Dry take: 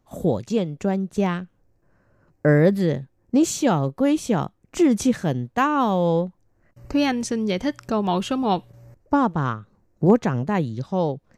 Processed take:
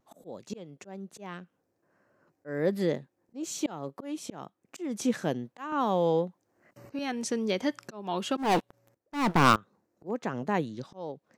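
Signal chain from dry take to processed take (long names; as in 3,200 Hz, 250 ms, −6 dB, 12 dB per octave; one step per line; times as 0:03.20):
high-pass filter 240 Hz 12 dB per octave
pitch vibrato 1.1 Hz 39 cents
0:08.37–0:09.56: leveller curve on the samples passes 5
volume swells 389 ms
0:05.72–0:06.99: multiband upward and downward compressor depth 40%
level −3.5 dB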